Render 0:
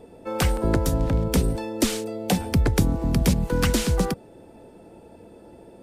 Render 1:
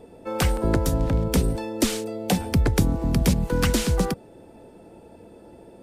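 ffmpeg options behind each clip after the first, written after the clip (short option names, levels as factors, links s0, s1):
-af anull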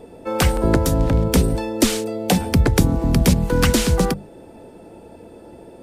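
-af "bandreject=f=50:t=h:w=6,bandreject=f=100:t=h:w=6,bandreject=f=150:t=h:w=6,bandreject=f=200:t=h:w=6,volume=1.88"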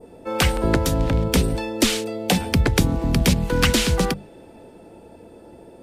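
-af "adynamicequalizer=threshold=0.0141:dfrequency=2900:dqfactor=0.72:tfrequency=2900:tqfactor=0.72:attack=5:release=100:ratio=0.375:range=3.5:mode=boostabove:tftype=bell,volume=0.708"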